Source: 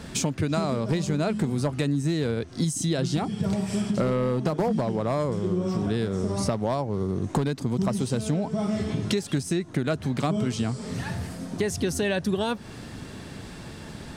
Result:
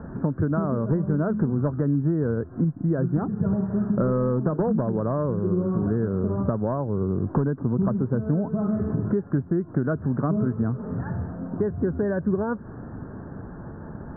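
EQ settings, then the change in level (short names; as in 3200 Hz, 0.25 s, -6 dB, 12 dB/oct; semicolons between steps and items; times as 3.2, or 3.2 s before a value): steep low-pass 1600 Hz 72 dB/oct; dynamic EQ 770 Hz, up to -7 dB, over -44 dBFS, Q 2.6; air absorption 340 m; +3.0 dB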